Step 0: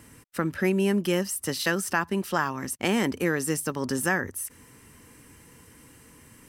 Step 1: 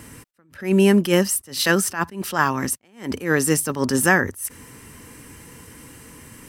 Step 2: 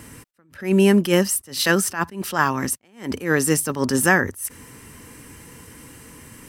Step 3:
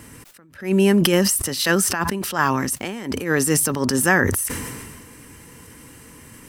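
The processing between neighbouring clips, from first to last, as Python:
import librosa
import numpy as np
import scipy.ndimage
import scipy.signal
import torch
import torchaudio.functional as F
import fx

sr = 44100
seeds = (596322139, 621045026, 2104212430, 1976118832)

y1 = fx.attack_slew(x, sr, db_per_s=170.0)
y1 = y1 * librosa.db_to_amplitude(9.0)
y2 = y1
y3 = fx.sustainer(y2, sr, db_per_s=31.0)
y3 = y3 * librosa.db_to_amplitude(-1.0)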